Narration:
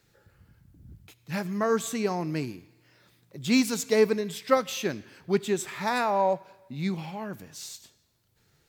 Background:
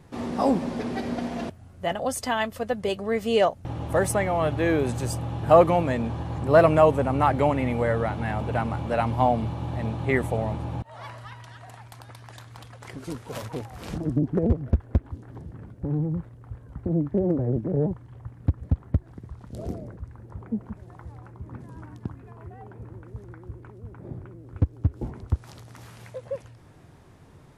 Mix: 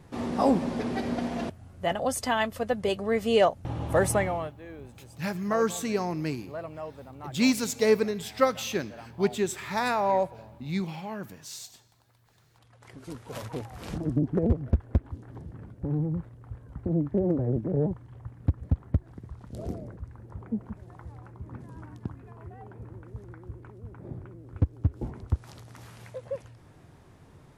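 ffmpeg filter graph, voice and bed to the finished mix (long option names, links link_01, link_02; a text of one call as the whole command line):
ffmpeg -i stem1.wav -i stem2.wav -filter_complex "[0:a]adelay=3900,volume=-0.5dB[link_01];[1:a]volume=19dB,afade=type=out:start_time=4.17:duration=0.36:silence=0.0891251,afade=type=in:start_time=12.52:duration=1:silence=0.105925[link_02];[link_01][link_02]amix=inputs=2:normalize=0" out.wav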